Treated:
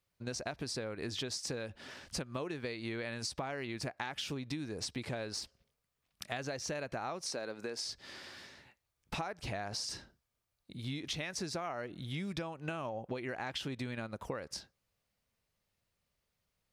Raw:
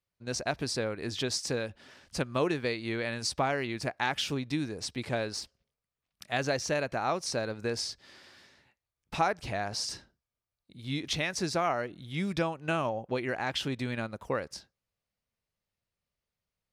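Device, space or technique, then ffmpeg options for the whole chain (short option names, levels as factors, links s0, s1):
serial compression, peaks first: -filter_complex "[0:a]acompressor=threshold=0.0158:ratio=6,acompressor=threshold=0.00316:ratio=1.5,asettb=1/sr,asplit=3[s0][s1][s2];[s0]atrim=end=7.264[s3];[s1]atrim=start=7.26:end=7.85,asetpts=PTS-STARTPTS,afade=t=in:d=0.004:c=qsin,afade=t=out:st=0.586:d=0.004:c=qsin,highpass=250[s4];[s2]atrim=start=7.846[s5];[s3][s4]acrossfade=d=0.004:c1=hsin:c2=qsin[s6];[s6][s5]acrossfade=d=0.004:c1=qsin:c2=hsin,volume=1.88"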